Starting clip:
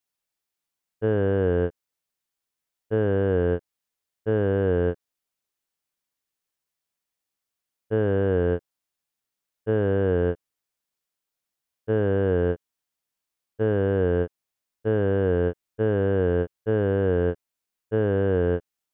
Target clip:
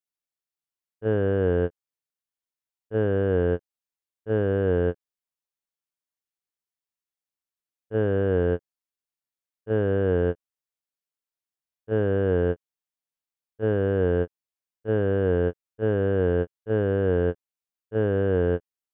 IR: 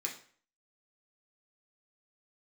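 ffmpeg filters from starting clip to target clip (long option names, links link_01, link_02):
-af "agate=range=-10dB:threshold=-22dB:ratio=16:detection=peak"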